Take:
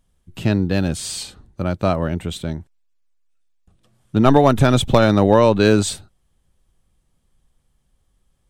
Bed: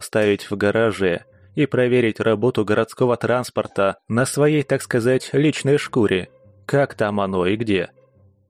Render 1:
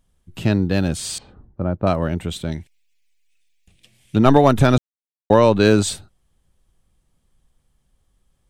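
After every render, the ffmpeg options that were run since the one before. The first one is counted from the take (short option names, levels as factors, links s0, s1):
-filter_complex "[0:a]asettb=1/sr,asplit=3[s0][s1][s2];[s0]atrim=end=1.184[s3];[s1]atrim=start=1.18:end=1.87,asetpts=PTS-STARTPTS,afade=t=in:d=0.004:c=qsin,afade=t=out:st=0.686:d=0.004:c=qsin,lowpass=1100[s4];[s2]atrim=start=1.866[s5];[s3][s4]acrossfade=d=0.004:c1=hsin:c2=qsin[s6];[s6][s5]acrossfade=d=0.004:c1=qsin:c2=hsin,asettb=1/sr,asplit=3[s7][s8][s9];[s7]atrim=end=2.524[s10];[s8]atrim=start=2.52:end=4.16,asetpts=PTS-STARTPTS,afade=t=in:d=0.004:c=qsin,afade=t=out:st=1.636:d=0.004:c=qsin,highshelf=f=1700:t=q:w=3:g=10[s11];[s9]atrim=start=4.156[s12];[s10][s11]acrossfade=d=0.004:c1=hsin:c2=qsin[s13];[s13][s12]acrossfade=d=0.004:c1=qsin:c2=hsin,asplit=3[s14][s15][s16];[s14]atrim=end=4.78,asetpts=PTS-STARTPTS,afade=t=out:st=4.776:d=0.004:c=hsin[s17];[s15]atrim=start=4.78:end=5.3,asetpts=PTS-STARTPTS,volume=0[s18];[s16]atrim=start=5.3,asetpts=PTS-STARTPTS,afade=t=in:d=0.004:c=hsin[s19];[s17][s18][s19]concat=n=3:v=0:a=1"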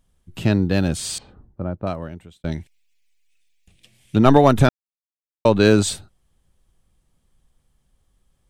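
-filter_complex "[0:a]asplit=4[s0][s1][s2][s3];[s0]atrim=end=2.44,asetpts=PTS-STARTPTS,afade=t=out:st=1.16:d=1.28[s4];[s1]atrim=start=2.44:end=4.69,asetpts=PTS-STARTPTS,afade=t=in:d=0.004:c=hsin,afade=t=out:st=2.246:d=0.004:c=hsin[s5];[s2]atrim=start=4.69:end=5.45,asetpts=PTS-STARTPTS,volume=0[s6];[s3]atrim=start=5.45,asetpts=PTS-STARTPTS,afade=t=in:d=0.004:c=hsin[s7];[s4][s5][s6][s7]concat=n=4:v=0:a=1"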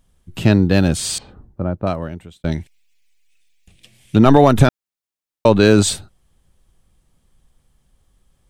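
-af "alimiter=level_in=1.78:limit=0.891:release=50:level=0:latency=1"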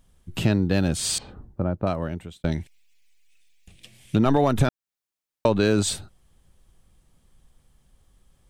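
-af "acompressor=threshold=0.0708:ratio=2"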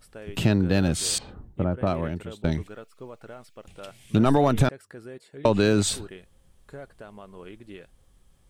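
-filter_complex "[1:a]volume=0.0631[s0];[0:a][s0]amix=inputs=2:normalize=0"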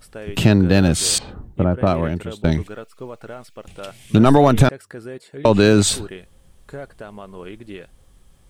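-af "volume=2.37,alimiter=limit=0.794:level=0:latency=1"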